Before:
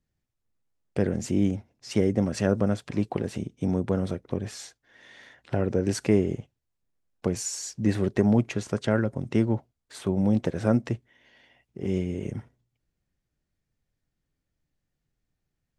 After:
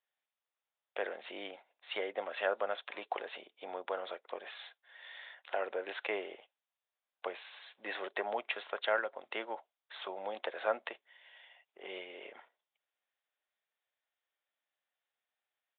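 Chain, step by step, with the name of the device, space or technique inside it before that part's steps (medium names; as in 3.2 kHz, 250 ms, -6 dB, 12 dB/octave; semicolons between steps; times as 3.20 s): musical greeting card (resampled via 8 kHz; high-pass 630 Hz 24 dB/octave; peaking EQ 3.7 kHz +4 dB 0.59 oct)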